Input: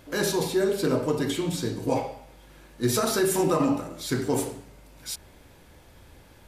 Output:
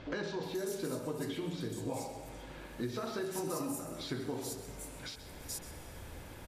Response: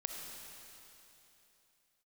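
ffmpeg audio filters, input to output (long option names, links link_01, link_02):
-filter_complex "[0:a]acompressor=threshold=-40dB:ratio=6,acrossover=split=5000[link_01][link_02];[link_02]adelay=430[link_03];[link_01][link_03]amix=inputs=2:normalize=0,asplit=2[link_04][link_05];[1:a]atrim=start_sample=2205,asetrate=48510,aresample=44100,adelay=130[link_06];[link_05][link_06]afir=irnorm=-1:irlink=0,volume=-9.5dB[link_07];[link_04][link_07]amix=inputs=2:normalize=0,volume=3.5dB"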